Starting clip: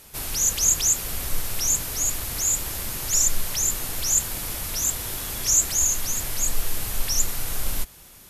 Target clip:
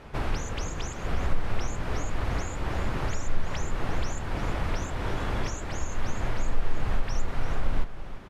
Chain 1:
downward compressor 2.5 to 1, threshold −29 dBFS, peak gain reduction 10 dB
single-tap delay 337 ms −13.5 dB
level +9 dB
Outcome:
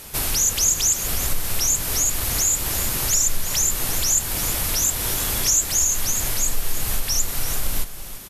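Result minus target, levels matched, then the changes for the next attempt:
2,000 Hz band −8.5 dB
add after downward compressor: low-pass filter 1,600 Hz 12 dB per octave

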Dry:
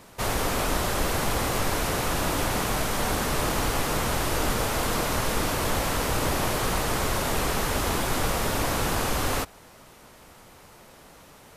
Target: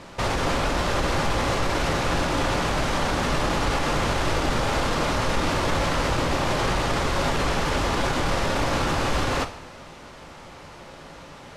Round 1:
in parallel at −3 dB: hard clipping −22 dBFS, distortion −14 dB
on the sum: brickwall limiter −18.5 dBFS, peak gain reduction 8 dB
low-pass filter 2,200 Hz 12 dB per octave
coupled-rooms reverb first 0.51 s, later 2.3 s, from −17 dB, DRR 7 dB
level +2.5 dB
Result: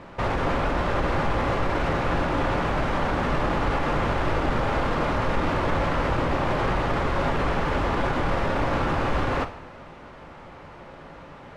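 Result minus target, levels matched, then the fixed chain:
4,000 Hz band −7.5 dB
in parallel at −3 dB: hard clipping −22 dBFS, distortion −14 dB
on the sum: brickwall limiter −18.5 dBFS, peak gain reduction 8 dB
low-pass filter 5,400 Hz 12 dB per octave
coupled-rooms reverb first 0.51 s, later 2.3 s, from −17 dB, DRR 7 dB
level +2.5 dB

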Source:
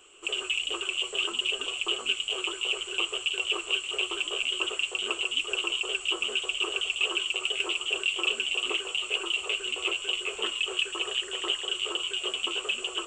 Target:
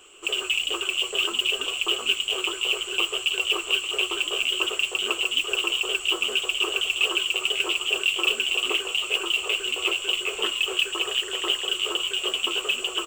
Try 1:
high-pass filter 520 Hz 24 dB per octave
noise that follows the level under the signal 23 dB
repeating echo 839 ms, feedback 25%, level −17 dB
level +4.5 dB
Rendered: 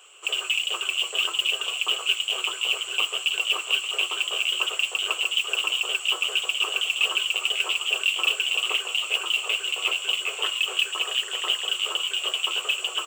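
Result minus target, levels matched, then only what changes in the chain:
500 Hz band −6.5 dB
remove: high-pass filter 520 Hz 24 dB per octave

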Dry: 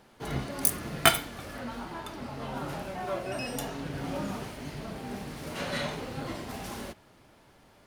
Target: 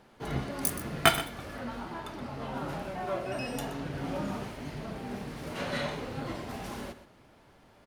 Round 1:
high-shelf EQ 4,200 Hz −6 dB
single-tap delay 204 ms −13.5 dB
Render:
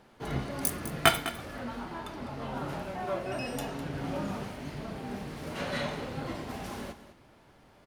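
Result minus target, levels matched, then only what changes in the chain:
echo 80 ms late
change: single-tap delay 124 ms −13.5 dB

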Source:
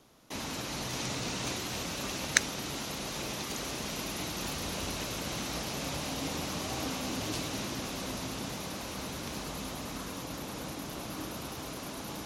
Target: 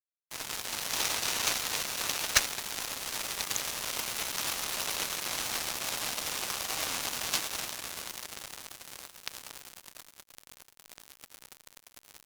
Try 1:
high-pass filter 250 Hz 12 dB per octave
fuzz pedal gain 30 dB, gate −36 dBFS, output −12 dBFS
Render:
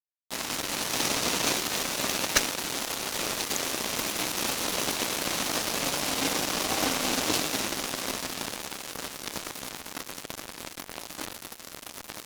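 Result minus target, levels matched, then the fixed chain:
250 Hz band +11.5 dB
high-pass filter 860 Hz 12 dB per octave
fuzz pedal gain 30 dB, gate −36 dBFS, output −12 dBFS

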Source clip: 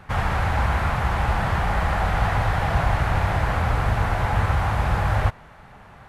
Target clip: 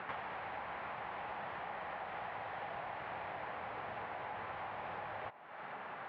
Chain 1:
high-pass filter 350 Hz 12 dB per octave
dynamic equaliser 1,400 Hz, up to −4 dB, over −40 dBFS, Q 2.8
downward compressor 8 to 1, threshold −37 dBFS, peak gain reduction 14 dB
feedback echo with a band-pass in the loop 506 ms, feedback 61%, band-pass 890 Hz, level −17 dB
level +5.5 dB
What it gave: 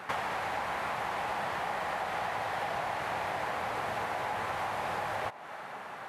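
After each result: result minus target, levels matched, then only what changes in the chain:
downward compressor: peak gain reduction −9.5 dB; 4,000 Hz band +3.5 dB
change: downward compressor 8 to 1, threshold −48 dBFS, peak gain reduction 23.5 dB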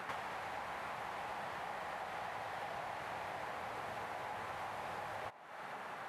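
4,000 Hz band +3.5 dB
add after dynamic equaliser: low-pass filter 3,200 Hz 24 dB per octave

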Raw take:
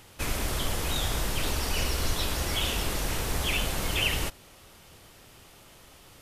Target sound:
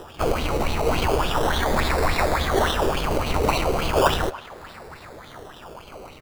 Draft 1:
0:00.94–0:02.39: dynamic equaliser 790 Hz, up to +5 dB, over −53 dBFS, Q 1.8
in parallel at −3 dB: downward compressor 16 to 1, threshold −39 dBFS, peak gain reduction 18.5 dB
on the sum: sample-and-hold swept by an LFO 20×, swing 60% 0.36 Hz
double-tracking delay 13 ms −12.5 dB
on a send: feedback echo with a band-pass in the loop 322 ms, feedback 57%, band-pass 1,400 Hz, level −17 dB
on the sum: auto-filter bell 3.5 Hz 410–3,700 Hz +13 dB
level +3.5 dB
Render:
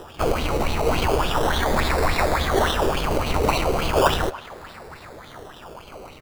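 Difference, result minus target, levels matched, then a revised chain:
downward compressor: peak gain reduction −9 dB
0:00.94–0:02.39: dynamic equaliser 790 Hz, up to +5 dB, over −53 dBFS, Q 1.8
in parallel at −3 dB: downward compressor 16 to 1, threshold −48.5 dBFS, peak gain reduction 27.5 dB
on the sum: sample-and-hold swept by an LFO 20×, swing 60% 0.36 Hz
double-tracking delay 13 ms −12.5 dB
on a send: feedback echo with a band-pass in the loop 322 ms, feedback 57%, band-pass 1,400 Hz, level −17 dB
on the sum: auto-filter bell 3.5 Hz 410–3,700 Hz +13 dB
level +3.5 dB

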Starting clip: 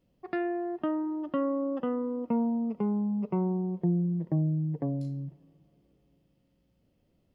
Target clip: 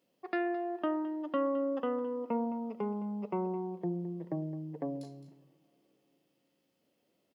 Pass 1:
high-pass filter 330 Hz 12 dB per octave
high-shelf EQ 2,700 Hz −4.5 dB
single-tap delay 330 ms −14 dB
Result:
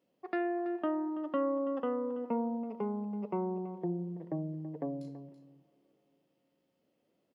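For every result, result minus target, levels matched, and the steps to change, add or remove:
echo 116 ms late; 4,000 Hz band −4.5 dB
change: single-tap delay 214 ms −14 dB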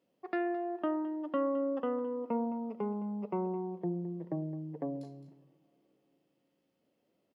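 4,000 Hz band −4.5 dB
change: high-shelf EQ 2,700 Hz +4 dB

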